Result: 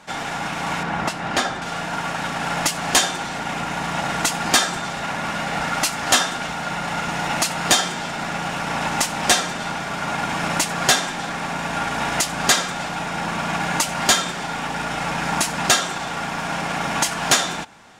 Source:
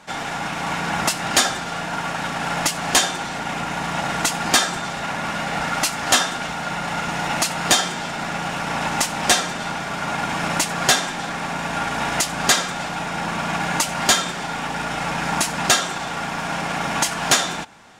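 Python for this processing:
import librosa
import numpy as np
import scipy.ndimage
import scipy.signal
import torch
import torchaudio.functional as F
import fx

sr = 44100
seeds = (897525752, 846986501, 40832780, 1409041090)

y = fx.lowpass(x, sr, hz=2000.0, slope=6, at=(0.83, 1.62))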